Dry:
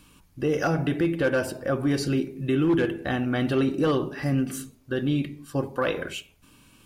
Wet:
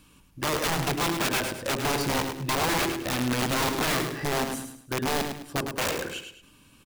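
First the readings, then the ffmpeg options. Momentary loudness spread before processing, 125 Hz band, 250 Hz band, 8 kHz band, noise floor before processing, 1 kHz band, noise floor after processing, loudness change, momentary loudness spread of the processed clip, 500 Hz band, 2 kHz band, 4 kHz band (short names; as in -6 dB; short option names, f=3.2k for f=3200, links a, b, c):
8 LU, -4.5 dB, -6.5 dB, +10.5 dB, -58 dBFS, +5.5 dB, -57 dBFS, -1.5 dB, 7 LU, -4.0 dB, +2.5 dB, +8.0 dB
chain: -af "aeval=exprs='(mod(9.44*val(0)+1,2)-1)/9.44':c=same,aecho=1:1:105|210|315|420:0.447|0.147|0.0486|0.0161,volume=-2dB"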